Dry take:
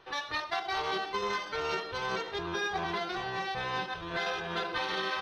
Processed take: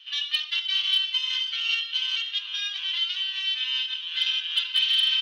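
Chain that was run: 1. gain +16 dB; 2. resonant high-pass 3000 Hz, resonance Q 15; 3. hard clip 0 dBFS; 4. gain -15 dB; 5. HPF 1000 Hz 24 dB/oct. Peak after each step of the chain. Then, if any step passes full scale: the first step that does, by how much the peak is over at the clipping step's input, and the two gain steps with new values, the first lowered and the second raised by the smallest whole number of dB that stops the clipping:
-5.0, +4.0, 0.0, -15.0, -12.5 dBFS; step 2, 4.0 dB; step 1 +12 dB, step 4 -11 dB

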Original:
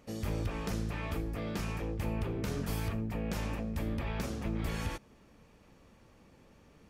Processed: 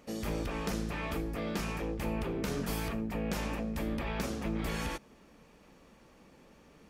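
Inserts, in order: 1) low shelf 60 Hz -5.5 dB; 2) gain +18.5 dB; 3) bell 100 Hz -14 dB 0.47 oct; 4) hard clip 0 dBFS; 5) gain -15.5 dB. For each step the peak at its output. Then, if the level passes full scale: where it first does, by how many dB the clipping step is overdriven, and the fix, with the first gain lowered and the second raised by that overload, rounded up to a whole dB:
-24.5, -6.0, -5.5, -5.5, -21.0 dBFS; no overload

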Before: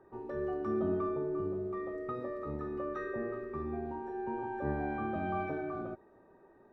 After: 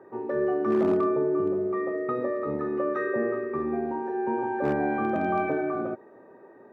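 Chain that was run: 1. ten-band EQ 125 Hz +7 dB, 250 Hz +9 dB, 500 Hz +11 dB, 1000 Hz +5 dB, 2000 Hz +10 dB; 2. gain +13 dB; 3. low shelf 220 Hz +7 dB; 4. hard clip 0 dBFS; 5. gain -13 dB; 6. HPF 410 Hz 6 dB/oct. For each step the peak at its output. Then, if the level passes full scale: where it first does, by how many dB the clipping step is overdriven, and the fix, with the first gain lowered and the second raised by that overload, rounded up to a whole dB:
-11.0, +2.0, +4.5, 0.0, -13.0, -13.5 dBFS; step 2, 4.5 dB; step 2 +8 dB, step 5 -8 dB

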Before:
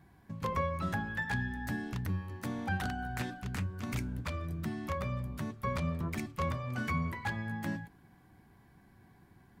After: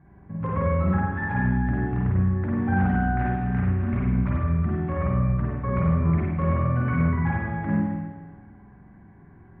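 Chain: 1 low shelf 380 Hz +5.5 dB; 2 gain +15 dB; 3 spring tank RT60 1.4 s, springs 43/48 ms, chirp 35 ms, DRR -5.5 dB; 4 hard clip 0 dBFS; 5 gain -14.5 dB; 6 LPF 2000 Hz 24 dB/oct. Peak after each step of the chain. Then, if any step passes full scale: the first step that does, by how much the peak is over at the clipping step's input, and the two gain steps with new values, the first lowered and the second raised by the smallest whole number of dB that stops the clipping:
-18.0, -3.0, +5.5, 0.0, -14.5, -14.0 dBFS; step 3, 5.5 dB; step 2 +9 dB, step 5 -8.5 dB

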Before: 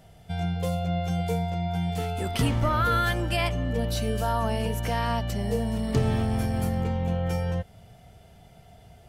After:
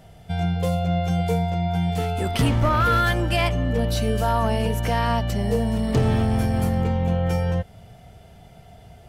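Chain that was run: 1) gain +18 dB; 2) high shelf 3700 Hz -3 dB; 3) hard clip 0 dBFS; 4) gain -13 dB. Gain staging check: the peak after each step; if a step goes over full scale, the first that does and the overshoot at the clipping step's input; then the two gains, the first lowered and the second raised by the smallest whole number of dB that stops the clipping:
+5.0, +5.0, 0.0, -13.0 dBFS; step 1, 5.0 dB; step 1 +13 dB, step 4 -8 dB

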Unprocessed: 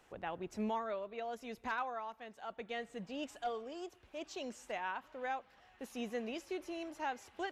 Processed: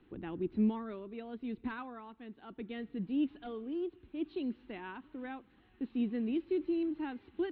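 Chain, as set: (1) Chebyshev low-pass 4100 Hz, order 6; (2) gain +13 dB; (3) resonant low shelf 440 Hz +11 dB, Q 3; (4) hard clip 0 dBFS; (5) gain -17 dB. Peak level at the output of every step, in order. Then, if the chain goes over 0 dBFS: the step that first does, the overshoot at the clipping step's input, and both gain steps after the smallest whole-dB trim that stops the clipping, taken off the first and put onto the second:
-26.5, -13.5, -4.5, -4.5, -21.5 dBFS; no overload

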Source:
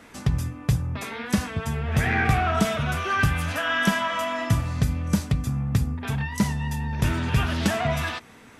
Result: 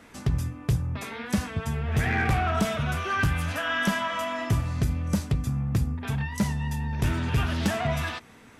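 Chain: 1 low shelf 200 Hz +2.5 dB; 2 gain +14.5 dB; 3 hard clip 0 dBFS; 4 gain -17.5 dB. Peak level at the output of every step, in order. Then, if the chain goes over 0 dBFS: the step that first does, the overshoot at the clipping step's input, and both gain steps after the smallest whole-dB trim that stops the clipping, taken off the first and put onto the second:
-7.5, +7.0, 0.0, -17.5 dBFS; step 2, 7.0 dB; step 2 +7.5 dB, step 4 -10.5 dB

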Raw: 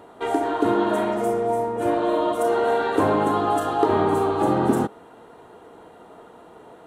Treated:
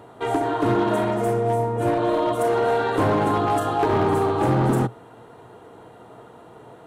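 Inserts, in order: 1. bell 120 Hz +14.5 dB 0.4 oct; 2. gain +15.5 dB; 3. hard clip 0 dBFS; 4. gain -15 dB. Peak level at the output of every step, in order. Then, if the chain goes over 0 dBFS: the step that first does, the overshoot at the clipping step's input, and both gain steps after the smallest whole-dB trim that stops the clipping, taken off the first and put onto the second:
-5.5, +10.0, 0.0, -15.0 dBFS; step 2, 10.0 dB; step 2 +5.5 dB, step 4 -5 dB

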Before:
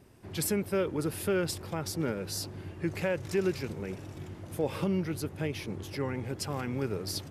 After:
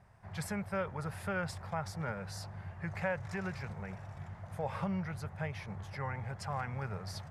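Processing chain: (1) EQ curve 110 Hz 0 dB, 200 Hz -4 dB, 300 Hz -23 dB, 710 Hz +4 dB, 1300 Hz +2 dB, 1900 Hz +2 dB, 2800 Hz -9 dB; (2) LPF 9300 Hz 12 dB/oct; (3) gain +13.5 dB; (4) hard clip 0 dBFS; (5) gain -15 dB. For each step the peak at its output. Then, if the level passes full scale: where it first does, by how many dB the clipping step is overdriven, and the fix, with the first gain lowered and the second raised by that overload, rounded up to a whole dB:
-19.0, -19.0, -5.5, -5.5, -20.5 dBFS; no overload

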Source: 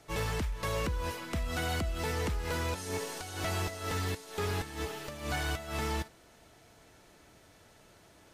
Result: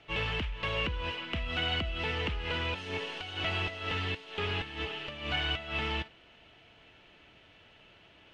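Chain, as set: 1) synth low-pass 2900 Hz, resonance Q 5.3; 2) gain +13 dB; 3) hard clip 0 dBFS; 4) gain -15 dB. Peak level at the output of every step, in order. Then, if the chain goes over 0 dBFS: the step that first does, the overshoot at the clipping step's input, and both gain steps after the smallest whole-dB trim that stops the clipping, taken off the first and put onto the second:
-16.0, -3.0, -3.0, -18.0 dBFS; no overload

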